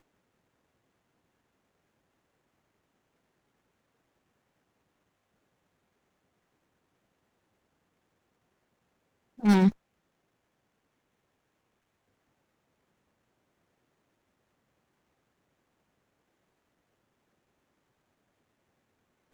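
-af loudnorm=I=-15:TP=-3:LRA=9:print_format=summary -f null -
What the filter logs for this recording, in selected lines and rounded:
Input Integrated:    -24.2 LUFS
Input True Peak:      -9.3 dBTP
Input LRA:             0.0 LU
Input Threshold:     -35.5 LUFS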